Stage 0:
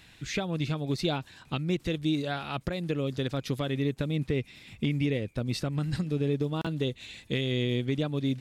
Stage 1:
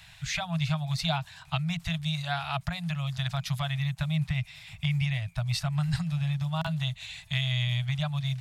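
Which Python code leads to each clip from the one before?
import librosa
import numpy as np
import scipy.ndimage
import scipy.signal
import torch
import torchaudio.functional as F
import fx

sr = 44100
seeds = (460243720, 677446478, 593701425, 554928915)

y = scipy.signal.sosfilt(scipy.signal.cheby1(5, 1.0, [170.0, 640.0], 'bandstop', fs=sr, output='sos'), x)
y = F.gain(torch.from_numpy(y), 4.0).numpy()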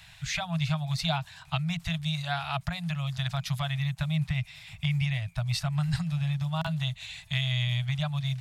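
y = x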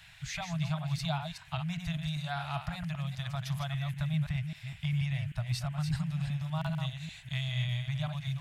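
y = fx.reverse_delay(x, sr, ms=197, wet_db=-6.5)
y = fx.dynamic_eq(y, sr, hz=3200.0, q=0.74, threshold_db=-46.0, ratio=4.0, max_db=-4)
y = fx.dmg_noise_band(y, sr, seeds[0], low_hz=1500.0, high_hz=3100.0, level_db=-56.0)
y = F.gain(torch.from_numpy(y), -4.5).numpy()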